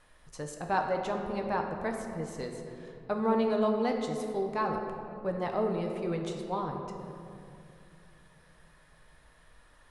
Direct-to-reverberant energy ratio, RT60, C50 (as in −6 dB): 2.0 dB, 2.6 s, 4.5 dB